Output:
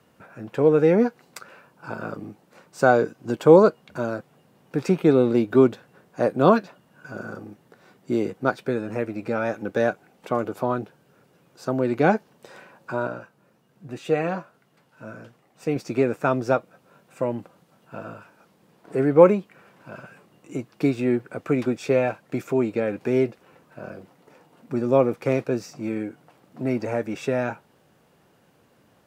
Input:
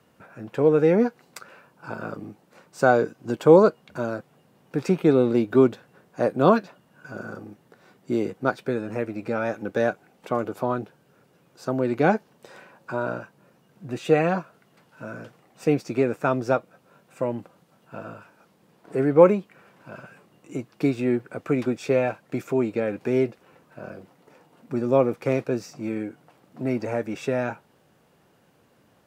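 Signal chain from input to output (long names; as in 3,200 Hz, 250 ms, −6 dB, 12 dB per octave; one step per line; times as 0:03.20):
0:13.07–0:15.76: flanger 1.2 Hz, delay 6.4 ms, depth 3.4 ms, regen +80%
level +1 dB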